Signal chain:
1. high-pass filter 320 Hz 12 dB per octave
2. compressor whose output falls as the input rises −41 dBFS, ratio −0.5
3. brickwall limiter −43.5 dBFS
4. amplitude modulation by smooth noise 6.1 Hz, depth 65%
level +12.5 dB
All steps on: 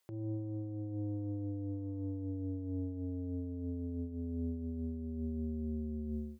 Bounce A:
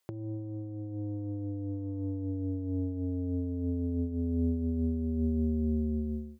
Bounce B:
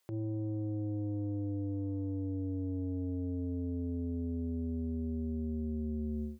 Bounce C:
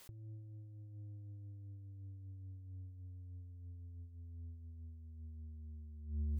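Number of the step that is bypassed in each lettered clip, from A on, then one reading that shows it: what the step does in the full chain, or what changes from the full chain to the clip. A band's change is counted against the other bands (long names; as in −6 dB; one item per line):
3, average gain reduction 5.5 dB
4, change in momentary loudness spread −1 LU
1, change in crest factor +6.0 dB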